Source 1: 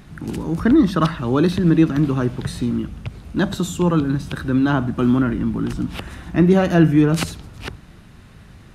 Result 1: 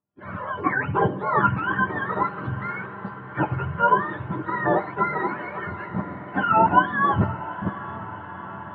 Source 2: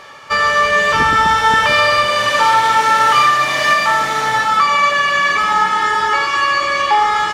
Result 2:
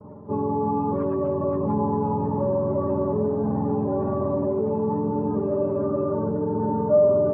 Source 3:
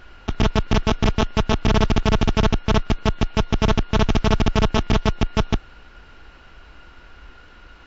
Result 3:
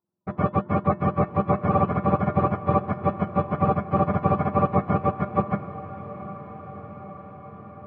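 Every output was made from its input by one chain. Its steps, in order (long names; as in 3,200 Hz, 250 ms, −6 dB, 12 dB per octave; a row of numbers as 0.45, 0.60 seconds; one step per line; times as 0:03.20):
frequency axis turned over on the octave scale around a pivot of 710 Hz
noise gate −38 dBFS, range −39 dB
in parallel at −1.5 dB: compressor whose output falls as the input rises −18 dBFS, ratio −1
on the sum: transistor ladder low-pass 1,200 Hz, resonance 55%
tuned comb filter 200 Hz, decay 0.16 s, harmonics odd, mix 70%
feedback delay with all-pass diffusion 785 ms, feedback 71%, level −15 dB
loudness normalisation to −24 LKFS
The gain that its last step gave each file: +13.5, +3.0, +12.5 decibels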